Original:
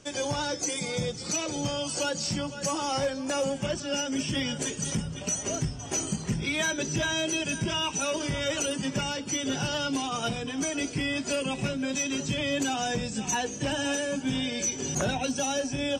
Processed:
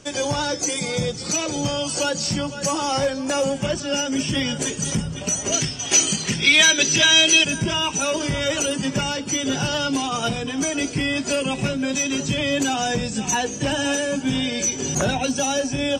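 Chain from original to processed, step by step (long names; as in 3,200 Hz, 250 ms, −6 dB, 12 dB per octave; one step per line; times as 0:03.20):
0:05.52–0:07.45: meter weighting curve D
level +6.5 dB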